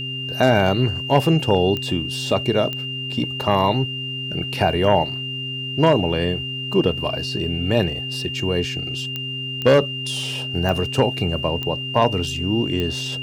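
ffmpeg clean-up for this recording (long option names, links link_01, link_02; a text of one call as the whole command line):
ffmpeg -i in.wav -af "adeclick=threshold=4,bandreject=frequency=131.1:width_type=h:width=4,bandreject=frequency=262.2:width_type=h:width=4,bandreject=frequency=393.3:width_type=h:width=4,bandreject=frequency=2800:width=30,agate=range=-21dB:threshold=-20dB" out.wav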